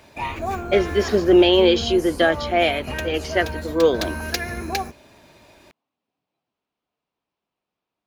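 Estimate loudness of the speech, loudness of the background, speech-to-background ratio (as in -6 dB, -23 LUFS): -19.5 LUFS, -29.5 LUFS, 10.0 dB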